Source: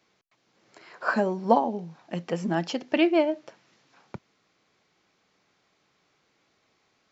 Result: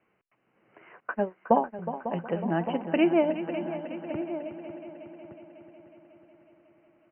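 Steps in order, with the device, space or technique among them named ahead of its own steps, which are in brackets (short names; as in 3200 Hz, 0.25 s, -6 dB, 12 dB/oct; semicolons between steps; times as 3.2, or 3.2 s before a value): 1–1.79 gate -22 dBFS, range -44 dB; Chebyshev low-pass 3000 Hz, order 10; shout across a valley (air absorption 260 m; outdoor echo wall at 200 m, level -12 dB); multi-head echo 0.183 s, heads second and third, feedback 59%, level -12.5 dB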